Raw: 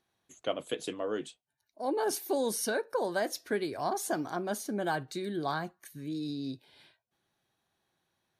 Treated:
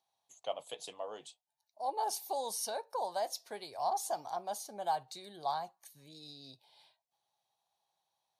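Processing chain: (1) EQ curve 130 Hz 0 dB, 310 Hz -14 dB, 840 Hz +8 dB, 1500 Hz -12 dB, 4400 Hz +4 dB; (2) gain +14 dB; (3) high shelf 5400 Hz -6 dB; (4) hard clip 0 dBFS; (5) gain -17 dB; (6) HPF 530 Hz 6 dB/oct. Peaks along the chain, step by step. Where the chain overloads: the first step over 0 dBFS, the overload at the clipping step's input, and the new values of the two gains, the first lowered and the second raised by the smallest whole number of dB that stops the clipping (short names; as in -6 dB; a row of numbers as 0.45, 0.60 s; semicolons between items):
-16.5, -2.5, -2.5, -2.5, -19.5, -21.5 dBFS; no overload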